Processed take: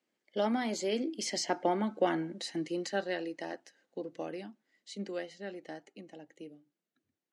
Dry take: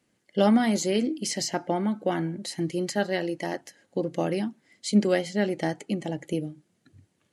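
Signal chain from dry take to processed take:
source passing by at 0:01.90, 12 m/s, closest 9.1 metres
three-way crossover with the lows and the highs turned down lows −22 dB, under 220 Hz, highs −15 dB, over 7,400 Hz
level −1 dB

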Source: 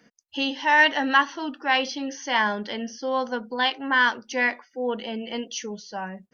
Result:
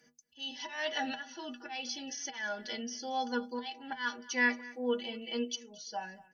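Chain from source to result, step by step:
high-shelf EQ 3,500 Hz +10.5 dB
notch filter 1,100 Hz, Q 5.3
volume swells 333 ms
stiff-string resonator 72 Hz, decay 0.33 s, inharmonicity 0.03
on a send: single-tap delay 225 ms −20 dB

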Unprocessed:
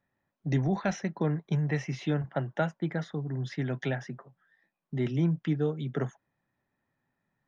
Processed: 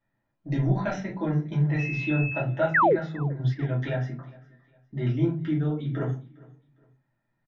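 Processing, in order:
low-pass filter 4,400 Hz 12 dB per octave
rectangular room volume 130 cubic metres, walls furnished, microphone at 2.7 metres
0:01.78–0:02.41: steady tone 2,600 Hz −26 dBFS
0:02.74–0:02.96: sound drawn into the spectrogram fall 330–2,100 Hz −14 dBFS
0:03.17–0:03.69: transient designer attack +7 dB, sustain −9 dB
repeating echo 407 ms, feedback 32%, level −23 dB
level −5 dB

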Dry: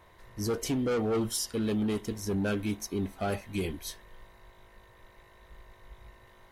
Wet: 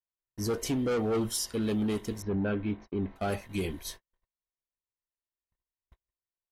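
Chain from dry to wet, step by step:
0:02.22–0:03.16: Gaussian smoothing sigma 3 samples
noise gate −43 dBFS, range −50 dB

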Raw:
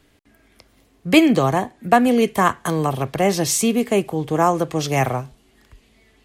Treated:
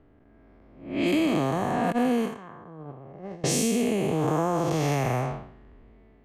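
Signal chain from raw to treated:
spectrum smeared in time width 313 ms
0:01.92–0:03.44: noise gate −19 dBFS, range −23 dB
low-pass that shuts in the quiet parts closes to 980 Hz, open at −21 dBFS
downward compressor, threshold −25 dBFS, peak gain reduction 8.5 dB
level +4 dB

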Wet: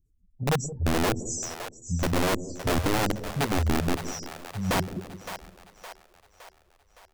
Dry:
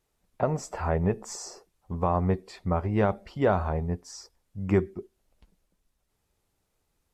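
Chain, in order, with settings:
expanding power law on the bin magnitudes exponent 2.3
elliptic band-stop filter 280–6,100 Hz, stop band 40 dB
in parallel at −0.5 dB: downward compressor 5 to 1, threshold −44 dBFS, peak gain reduction 20 dB
on the sum: wrap-around overflow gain 24 dB
mains-hum notches 50/100 Hz
echo with a time of its own for lows and highs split 490 Hz, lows 169 ms, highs 564 ms, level −10 dB
level +4.5 dB

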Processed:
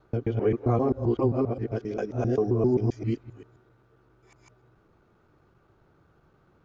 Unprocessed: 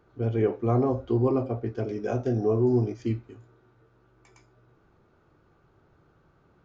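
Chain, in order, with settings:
reversed piece by piece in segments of 132 ms

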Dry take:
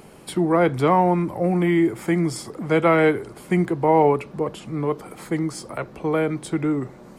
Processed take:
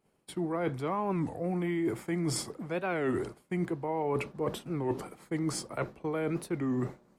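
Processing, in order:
downward expander −30 dBFS
reversed playback
downward compressor 12 to 1, threshold −28 dBFS, peak gain reduction 17 dB
reversed playback
wow of a warped record 33 1/3 rpm, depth 250 cents

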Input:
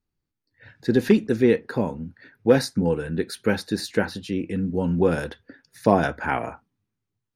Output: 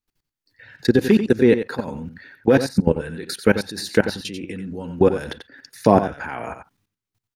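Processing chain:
output level in coarse steps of 20 dB
on a send: single-tap delay 90 ms −10.5 dB
on the sum: one half of a high-frequency compander encoder only
level +8 dB

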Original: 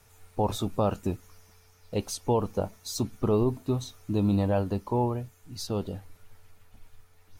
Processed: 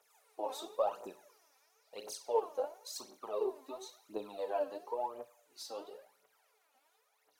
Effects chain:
four-pole ladder high-pass 420 Hz, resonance 30%
convolution reverb RT60 0.55 s, pre-delay 8 ms, DRR 5 dB
phase shifter 0.96 Hz, delay 3.9 ms, feedback 72%
level −6.5 dB

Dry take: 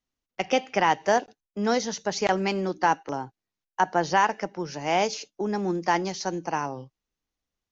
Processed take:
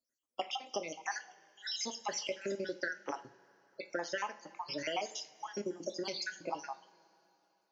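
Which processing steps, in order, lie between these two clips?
time-frequency cells dropped at random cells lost 69%
high-pass filter 720 Hz 6 dB per octave
downward compressor 6 to 1, threshold −39 dBFS, peak gain reduction 17 dB
coupled-rooms reverb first 0.33 s, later 3.2 s, from −21 dB, DRR 7.5 dB
level +4 dB

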